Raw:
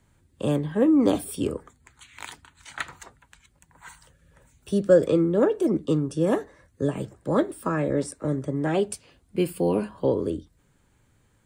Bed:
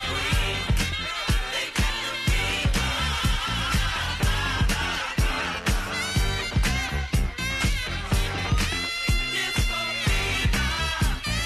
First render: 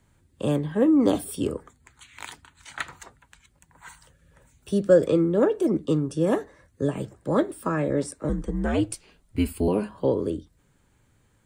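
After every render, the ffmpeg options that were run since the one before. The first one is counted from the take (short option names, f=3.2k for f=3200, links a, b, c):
-filter_complex "[0:a]asettb=1/sr,asplit=3[a][b][c];[a]atrim=end=0.824[d];[b]atrim=start=0.82:end=1.55,asetpts=PTS-STARTPTS,afade=t=in:d=0.004:c=qsin,afade=t=out:st=0.726:d=0.004:c=qsin,bandreject=f=2.4k:w=12[e];[c]atrim=start=1.546[f];[d][e]acrossfade=d=0.004:c1=hsin:c2=qsin[g];[g][f]acrossfade=d=0.004:c1=qsin:c2=hsin,asettb=1/sr,asplit=3[h][i][j];[h]atrim=end=8.294[k];[i]atrim=start=8.29:end=9.68,asetpts=PTS-STARTPTS,afade=t=in:d=0.004:c=qsin,afade=t=out:st=1.386:d=0.004:c=qsin,afreqshift=-95[l];[j]atrim=start=9.676[m];[k][l]acrossfade=d=0.004:c1=hsin:c2=qsin[n];[n][m]acrossfade=d=0.004:c1=qsin:c2=hsin"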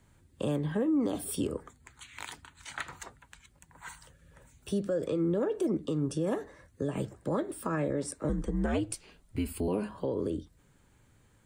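-af "acompressor=threshold=-23dB:ratio=6,alimiter=limit=-21.5dB:level=0:latency=1:release=133"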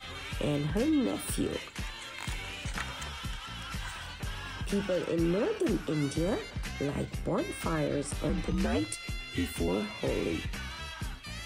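-filter_complex "[1:a]volume=-14.5dB[a];[0:a][a]amix=inputs=2:normalize=0"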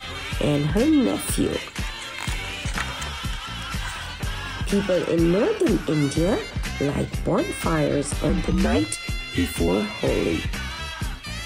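-af "volume=9dB"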